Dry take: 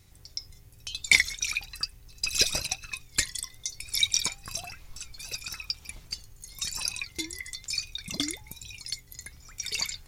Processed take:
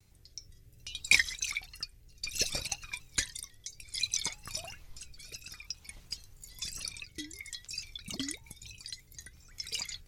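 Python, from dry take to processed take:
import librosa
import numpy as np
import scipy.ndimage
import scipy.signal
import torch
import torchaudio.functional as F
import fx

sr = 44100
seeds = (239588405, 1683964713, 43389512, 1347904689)

y = fx.rotary_switch(x, sr, hz=0.6, then_hz=5.5, switch_at_s=7.24)
y = fx.vibrato_shape(y, sr, shape='square', rate_hz=3.0, depth_cents=100.0)
y = y * librosa.db_to_amplitude(-3.5)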